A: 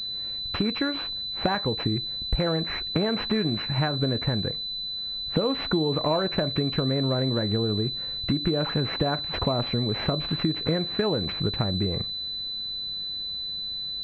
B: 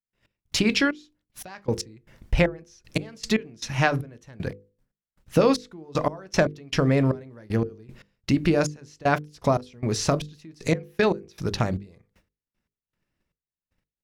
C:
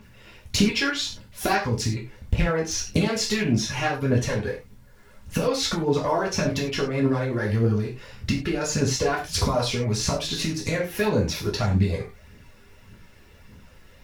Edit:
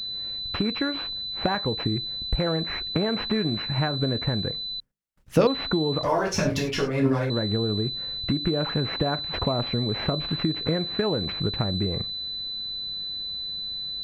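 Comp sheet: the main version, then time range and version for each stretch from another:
A
4.80–5.47 s: from B
6.03–7.30 s: from C

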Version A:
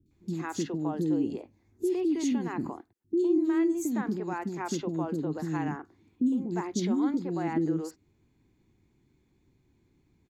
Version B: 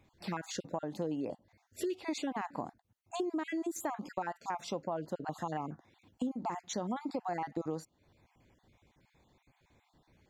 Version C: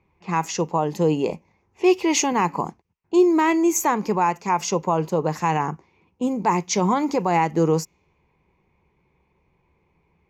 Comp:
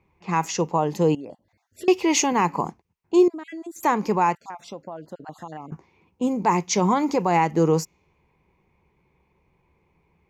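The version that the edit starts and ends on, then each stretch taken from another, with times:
C
1.15–1.88 s: from B
3.28–3.83 s: from B
4.35–5.72 s: from B
not used: A

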